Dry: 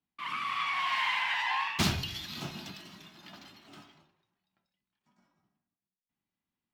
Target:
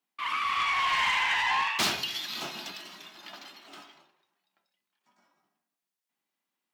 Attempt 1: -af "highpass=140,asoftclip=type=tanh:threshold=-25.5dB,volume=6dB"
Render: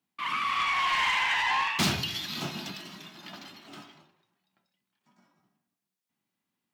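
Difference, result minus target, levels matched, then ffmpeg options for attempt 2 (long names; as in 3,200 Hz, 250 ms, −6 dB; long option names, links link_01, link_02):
125 Hz band +13.0 dB
-af "highpass=400,asoftclip=type=tanh:threshold=-25.5dB,volume=6dB"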